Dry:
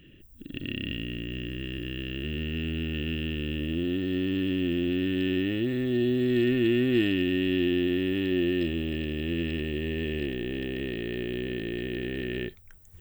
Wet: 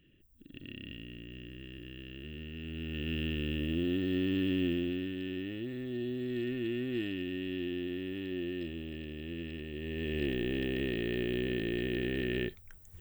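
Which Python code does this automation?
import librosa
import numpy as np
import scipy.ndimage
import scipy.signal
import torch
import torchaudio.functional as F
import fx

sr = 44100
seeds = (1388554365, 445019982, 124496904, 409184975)

y = fx.gain(x, sr, db=fx.line((2.57, -12.0), (3.19, -3.0), (4.65, -3.0), (5.16, -11.0), (9.69, -11.0), (10.29, -1.0)))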